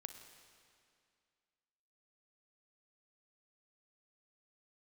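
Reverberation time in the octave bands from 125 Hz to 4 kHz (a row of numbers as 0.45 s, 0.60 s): 2.2 s, 2.4 s, 2.3 s, 2.3 s, 2.2 s, 2.1 s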